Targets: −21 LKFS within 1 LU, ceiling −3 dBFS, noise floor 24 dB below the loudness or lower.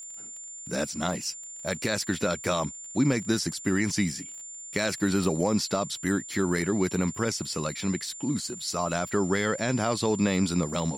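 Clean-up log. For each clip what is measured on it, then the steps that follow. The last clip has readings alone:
crackle rate 23 per second; interfering tone 7,200 Hz; level of the tone −39 dBFS; integrated loudness −28.0 LKFS; sample peak −12.0 dBFS; target loudness −21.0 LKFS
→ click removal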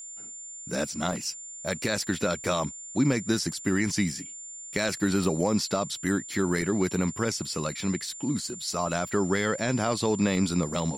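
crackle rate 0.091 per second; interfering tone 7,200 Hz; level of the tone −39 dBFS
→ notch filter 7,200 Hz, Q 30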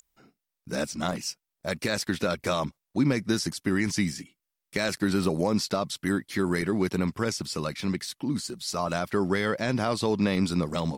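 interfering tone none found; integrated loudness −28.0 LKFS; sample peak −12.5 dBFS; target loudness −21.0 LKFS
→ level +7 dB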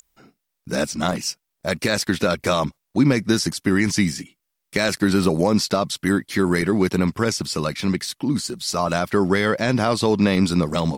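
integrated loudness −21.0 LKFS; sample peak −5.5 dBFS; background noise floor −78 dBFS

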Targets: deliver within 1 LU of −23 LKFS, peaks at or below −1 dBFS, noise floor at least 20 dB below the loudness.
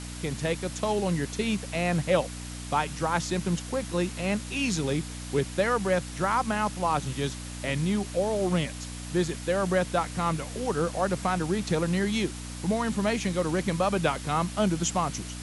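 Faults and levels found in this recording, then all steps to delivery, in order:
mains hum 60 Hz; hum harmonics up to 300 Hz; level of the hum −37 dBFS; background noise floor −38 dBFS; target noise floor −48 dBFS; integrated loudness −28.0 LKFS; sample peak −11.0 dBFS; target loudness −23.0 LKFS
→ hum removal 60 Hz, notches 5
noise reduction from a noise print 10 dB
level +5 dB

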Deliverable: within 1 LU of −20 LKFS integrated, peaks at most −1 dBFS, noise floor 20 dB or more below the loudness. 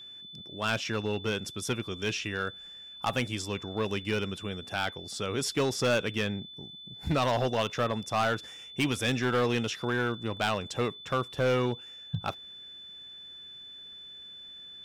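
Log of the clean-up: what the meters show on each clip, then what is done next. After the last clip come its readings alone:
share of clipped samples 1.6%; peaks flattened at −21.5 dBFS; interfering tone 3,500 Hz; level of the tone −44 dBFS; integrated loudness −30.5 LKFS; sample peak −21.5 dBFS; target loudness −20.0 LKFS
→ clipped peaks rebuilt −21.5 dBFS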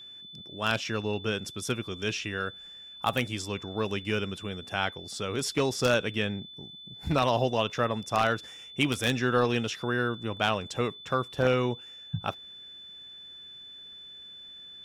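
share of clipped samples 0.0%; interfering tone 3,500 Hz; level of the tone −44 dBFS
→ notch filter 3,500 Hz, Q 30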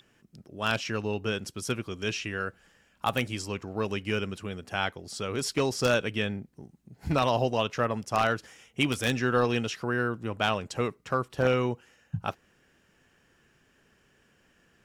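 interfering tone none found; integrated loudness −29.5 LKFS; sample peak −12.0 dBFS; target loudness −20.0 LKFS
→ level +9.5 dB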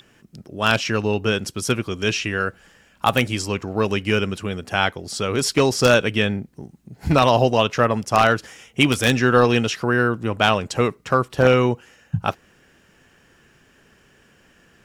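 integrated loudness −20.0 LKFS; sample peak −2.5 dBFS; background noise floor −57 dBFS

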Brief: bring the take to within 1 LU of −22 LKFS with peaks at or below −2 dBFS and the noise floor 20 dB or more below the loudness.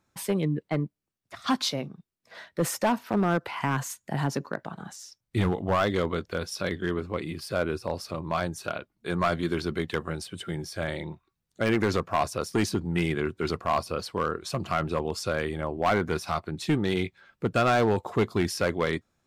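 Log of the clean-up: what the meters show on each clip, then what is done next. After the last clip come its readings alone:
share of clipped samples 1.0%; peaks flattened at −17.5 dBFS; integrated loudness −28.5 LKFS; sample peak −17.5 dBFS; target loudness −22.0 LKFS
→ clipped peaks rebuilt −17.5 dBFS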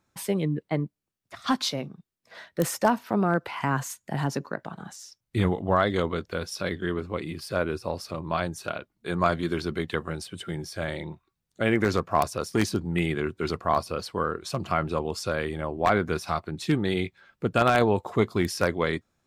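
share of clipped samples 0.0%; integrated loudness −28.0 LKFS; sample peak −8.5 dBFS; target loudness −22.0 LKFS
→ level +6 dB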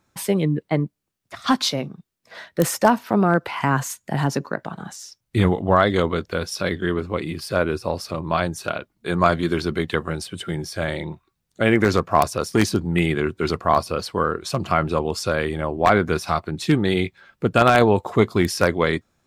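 integrated loudness −22.0 LKFS; sample peak −2.5 dBFS; background noise floor −75 dBFS

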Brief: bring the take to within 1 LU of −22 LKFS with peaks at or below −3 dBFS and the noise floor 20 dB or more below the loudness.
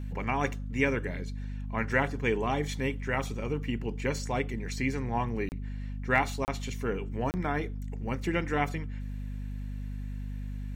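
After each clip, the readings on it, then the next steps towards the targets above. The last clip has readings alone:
number of dropouts 3; longest dropout 29 ms; mains hum 50 Hz; hum harmonics up to 250 Hz; level of the hum −34 dBFS; integrated loudness −32.0 LKFS; sample peak −10.5 dBFS; target loudness −22.0 LKFS
→ repair the gap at 0:05.49/0:06.45/0:07.31, 29 ms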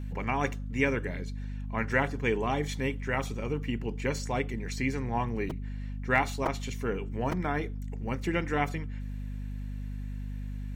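number of dropouts 0; mains hum 50 Hz; hum harmonics up to 250 Hz; level of the hum −34 dBFS
→ mains-hum notches 50/100/150/200/250 Hz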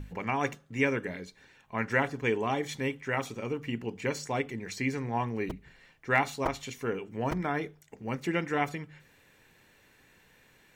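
mains hum none found; integrated loudness −32.0 LKFS; sample peak −10.5 dBFS; target loudness −22.0 LKFS
→ level +10 dB
brickwall limiter −3 dBFS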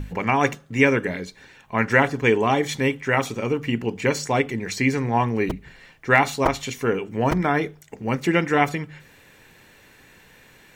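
integrated loudness −22.0 LKFS; sample peak −3.0 dBFS; background noise floor −52 dBFS

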